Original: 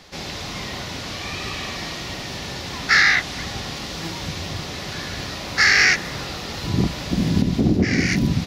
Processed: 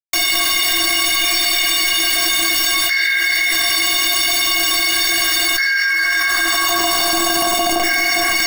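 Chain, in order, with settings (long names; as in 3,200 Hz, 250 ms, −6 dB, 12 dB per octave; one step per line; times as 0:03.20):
parametric band 99 Hz +14.5 dB 1 octave
notch filter 2,600 Hz, Q 6
hum removal 157.9 Hz, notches 21
in parallel at −2 dB: brickwall limiter −11.5 dBFS, peak gain reduction 11.5 dB
on the sum: high-pass filter sweep 2,200 Hz → 860 Hz, 0:04.98–0:06.99
bit reduction 4 bits
stiff-string resonator 330 Hz, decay 0.26 s, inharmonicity 0.03
on a send: delay that swaps between a low-pass and a high-pass 166 ms, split 1,600 Hz, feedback 53%, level −3.5 dB
on the sum: envelope flattener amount 100%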